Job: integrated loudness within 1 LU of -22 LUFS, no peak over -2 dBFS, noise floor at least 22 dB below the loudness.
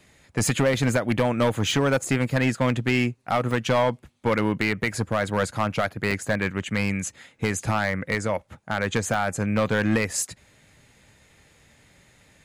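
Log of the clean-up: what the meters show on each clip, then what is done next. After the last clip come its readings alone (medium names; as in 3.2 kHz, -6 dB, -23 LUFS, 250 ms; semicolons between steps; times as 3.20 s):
clipped samples 1.6%; clipping level -15.0 dBFS; dropouts 4; longest dropout 1.7 ms; loudness -24.5 LUFS; peak level -15.0 dBFS; loudness target -22.0 LUFS
-> clip repair -15 dBFS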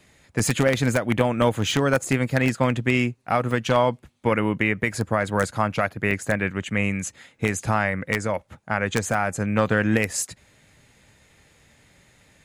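clipped samples 0.0%; dropouts 4; longest dropout 1.7 ms
-> interpolate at 1.71/3.51/6.11/9.14 s, 1.7 ms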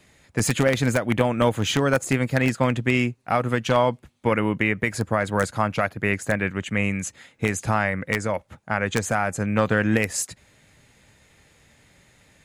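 dropouts 0; loudness -23.5 LUFS; peak level -6.0 dBFS; loudness target -22.0 LUFS
-> trim +1.5 dB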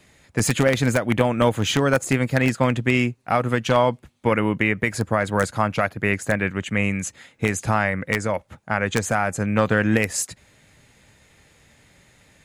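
loudness -22.0 LUFS; peak level -4.5 dBFS; noise floor -57 dBFS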